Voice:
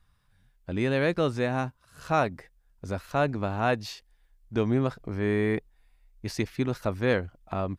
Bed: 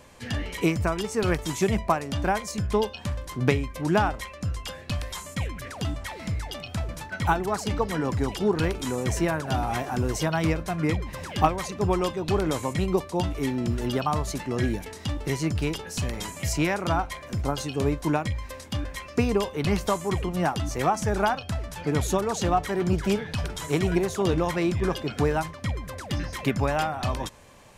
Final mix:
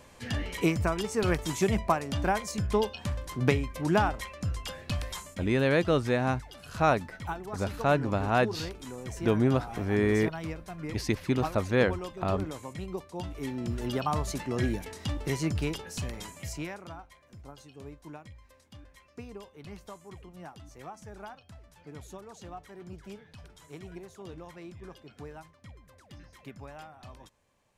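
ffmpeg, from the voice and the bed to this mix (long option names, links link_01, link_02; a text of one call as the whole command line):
ffmpeg -i stem1.wav -i stem2.wav -filter_complex "[0:a]adelay=4700,volume=0.5dB[link_01];[1:a]volume=7dB,afade=type=out:start_time=5.13:duration=0.26:silence=0.316228,afade=type=in:start_time=13.1:duration=1.1:silence=0.334965,afade=type=out:start_time=15.51:duration=1.45:silence=0.133352[link_02];[link_01][link_02]amix=inputs=2:normalize=0" out.wav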